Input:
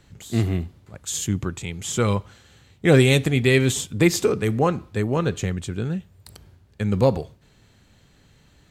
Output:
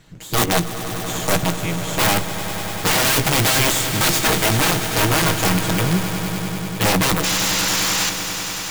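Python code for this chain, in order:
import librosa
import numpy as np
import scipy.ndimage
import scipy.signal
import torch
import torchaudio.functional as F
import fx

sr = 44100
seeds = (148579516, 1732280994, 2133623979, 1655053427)

y = fx.lower_of_two(x, sr, delay_ms=6.3)
y = fx.high_shelf(y, sr, hz=4200.0, db=-11.5, at=(0.46, 3.05))
y = (np.mod(10.0 ** (18.5 / 20.0) * y + 1.0, 2.0) - 1.0) / 10.0 ** (18.5 / 20.0)
y = fx.spec_paint(y, sr, seeds[0], shape='noise', start_s=7.23, length_s=0.87, low_hz=770.0, high_hz=7600.0, level_db=-27.0)
y = (np.mod(10.0 ** (19.0 / 20.0) * y + 1.0, 2.0) - 1.0) / 10.0 ** (19.0 / 20.0)
y = fx.doubler(y, sr, ms=17.0, db=-12.5)
y = fx.echo_swell(y, sr, ms=98, loudest=5, wet_db=-14)
y = F.gain(torch.from_numpy(y), 6.0).numpy()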